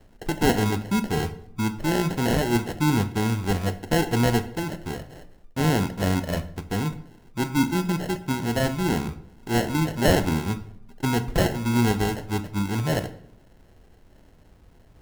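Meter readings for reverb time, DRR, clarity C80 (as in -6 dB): 0.70 s, 9.0 dB, 17.0 dB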